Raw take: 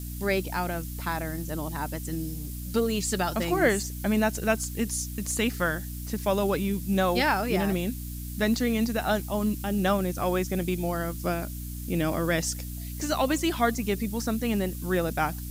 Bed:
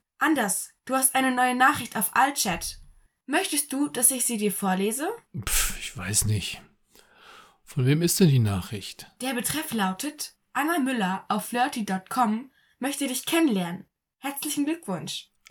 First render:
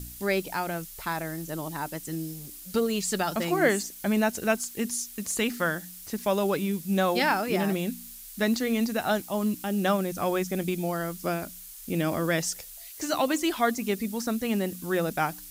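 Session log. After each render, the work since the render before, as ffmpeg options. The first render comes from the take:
-af "bandreject=f=60:t=h:w=4,bandreject=f=120:t=h:w=4,bandreject=f=180:t=h:w=4,bandreject=f=240:t=h:w=4,bandreject=f=300:t=h:w=4"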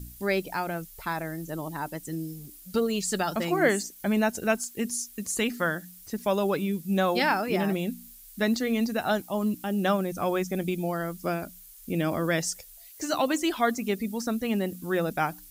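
-af "afftdn=nr=8:nf=-44"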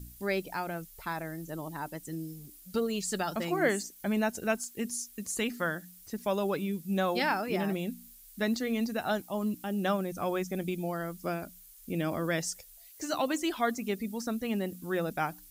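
-af "volume=0.596"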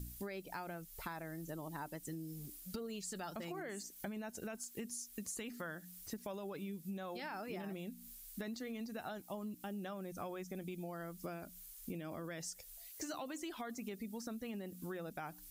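-af "alimiter=limit=0.0668:level=0:latency=1:release=15,acompressor=threshold=0.00891:ratio=10"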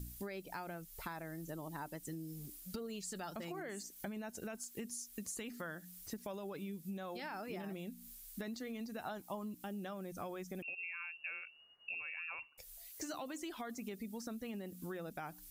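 -filter_complex "[0:a]asettb=1/sr,asplit=3[s0][s1][s2];[s0]atrim=end=9.024[s3];[s1]atrim=start=9.02:end=9.57,asetpts=PTS-STARTPTS,afade=t=in:d=0.004:c=qsin,afade=t=out:st=0.546:d=0.004:c=qsin,equalizer=f=990:t=o:w=0.53:g=6[s4];[s2]atrim=start=9.566[s5];[s3][s4]acrossfade=d=0.004:c1=hsin:c2=qsin[s6];[s6][s5]acrossfade=d=0.004:c1=qsin:c2=hsin,asettb=1/sr,asplit=3[s7][s8][s9];[s7]atrim=end=10.624[s10];[s8]atrim=start=10.62:end=12.58,asetpts=PTS-STARTPTS,afade=t=in:d=0.004:c=qsin,afade=t=out:st=1.956:d=0.004:c=qsin,lowpass=f=2500:t=q:w=0.5098,lowpass=f=2500:t=q:w=0.6013,lowpass=f=2500:t=q:w=0.9,lowpass=f=2500:t=q:w=2.563,afreqshift=-2900[s11];[s9]atrim=start=12.576[s12];[s10][s11]acrossfade=d=0.004:c1=hsin:c2=qsin[s13];[s13][s12]acrossfade=d=0.004:c1=qsin:c2=hsin"

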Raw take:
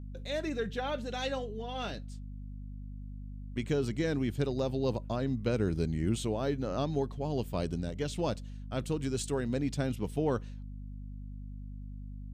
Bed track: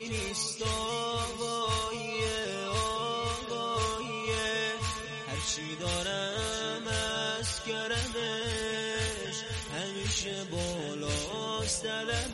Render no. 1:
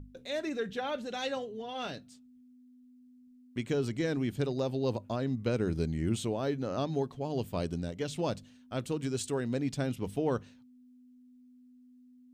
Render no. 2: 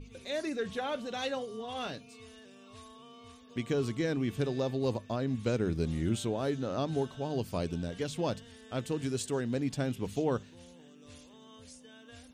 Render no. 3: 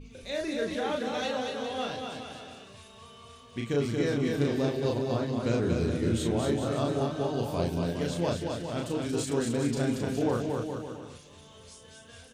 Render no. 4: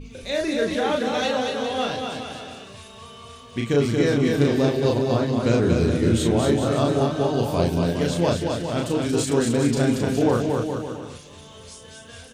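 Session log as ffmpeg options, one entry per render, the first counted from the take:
-af "bandreject=f=50:t=h:w=6,bandreject=f=100:t=h:w=6,bandreject=f=150:t=h:w=6,bandreject=f=200:t=h:w=6"
-filter_complex "[1:a]volume=0.0841[s0];[0:a][s0]amix=inputs=2:normalize=0"
-filter_complex "[0:a]asplit=2[s0][s1];[s1]adelay=35,volume=0.75[s2];[s0][s2]amix=inputs=2:normalize=0,aecho=1:1:230|414|561.2|679|773.2:0.631|0.398|0.251|0.158|0.1"
-af "volume=2.51"

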